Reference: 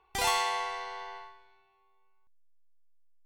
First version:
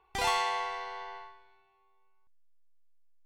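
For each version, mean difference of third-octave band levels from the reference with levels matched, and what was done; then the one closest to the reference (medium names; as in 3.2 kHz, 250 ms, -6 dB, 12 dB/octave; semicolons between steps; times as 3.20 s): 1.5 dB: treble shelf 6.9 kHz -11 dB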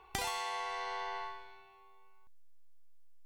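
5.5 dB: compression 8:1, threshold -44 dBFS, peak gain reduction 19.5 dB; trim +8.5 dB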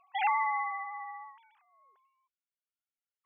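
16.5 dB: formants replaced by sine waves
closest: first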